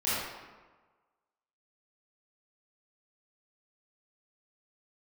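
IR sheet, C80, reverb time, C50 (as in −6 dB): −0.5 dB, 1.3 s, −4.5 dB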